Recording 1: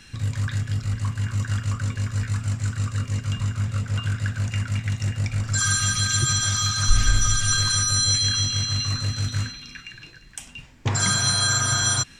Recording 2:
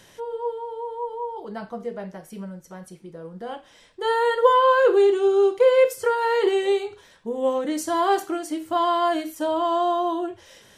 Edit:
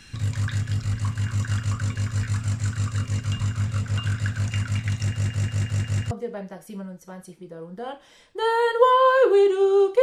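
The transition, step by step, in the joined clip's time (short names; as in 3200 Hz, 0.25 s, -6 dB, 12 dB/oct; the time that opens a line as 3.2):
recording 1
5.03 stutter in place 0.18 s, 6 plays
6.11 switch to recording 2 from 1.74 s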